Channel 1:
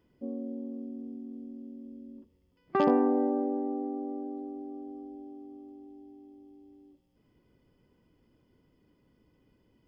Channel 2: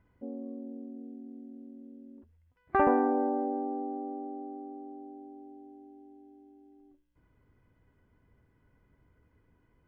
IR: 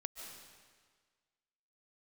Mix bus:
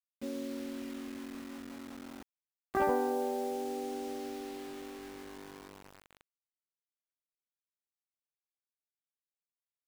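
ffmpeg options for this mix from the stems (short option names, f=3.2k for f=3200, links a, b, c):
-filter_complex "[0:a]acompressor=threshold=-31dB:ratio=10,volume=-1.5dB[a];[1:a]adelay=20,volume=-5dB[b];[a][b]amix=inputs=2:normalize=0,acrusher=bits=7:mix=0:aa=0.000001"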